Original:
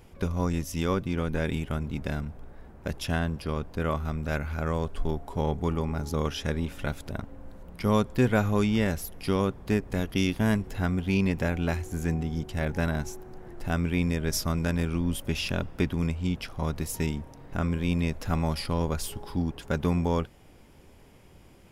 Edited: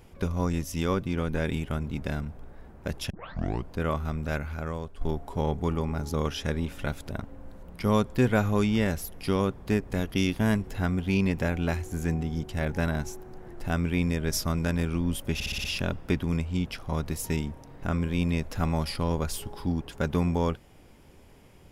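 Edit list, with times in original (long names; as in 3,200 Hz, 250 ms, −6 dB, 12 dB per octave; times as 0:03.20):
0:03.10: tape start 0.60 s
0:04.25–0:05.01: fade out linear, to −10.5 dB
0:15.34: stutter 0.06 s, 6 plays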